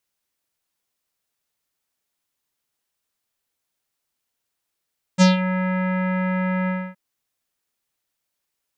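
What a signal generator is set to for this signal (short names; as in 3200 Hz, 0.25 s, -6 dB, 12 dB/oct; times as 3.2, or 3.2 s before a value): synth note square F#3 24 dB/oct, low-pass 2000 Hz, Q 2.3, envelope 2 oct, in 0.25 s, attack 36 ms, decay 0.15 s, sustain -11.5 dB, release 0.27 s, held 1.50 s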